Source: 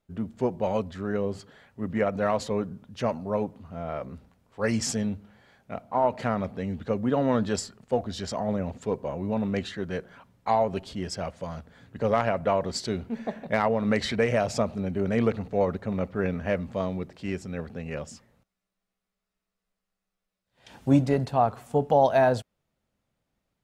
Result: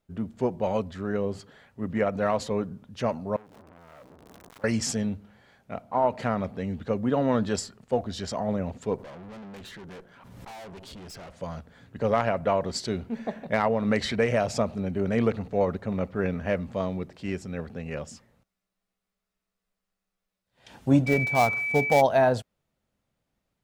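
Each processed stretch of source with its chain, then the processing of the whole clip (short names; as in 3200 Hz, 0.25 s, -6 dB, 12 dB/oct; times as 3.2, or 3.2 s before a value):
3.36–4.64 zero-crossing step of -36 dBFS + compressor 16:1, threshold -41 dBFS + core saturation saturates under 1400 Hz
8.96–11.31 tube stage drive 41 dB, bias 0.75 + backwards sustainer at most 35 dB/s
21.06–22 switching dead time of 0.11 ms + notch 2400 Hz, Q 16 + whine 2300 Hz -26 dBFS
whole clip: dry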